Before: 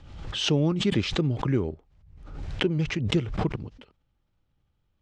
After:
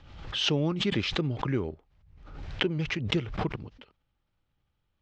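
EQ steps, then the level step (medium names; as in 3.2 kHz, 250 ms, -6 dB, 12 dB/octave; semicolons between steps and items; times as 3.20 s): low-pass 6.8 kHz 12 dB/octave; distance through air 65 m; tilt shelf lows -3.5 dB, about 690 Hz; -1.5 dB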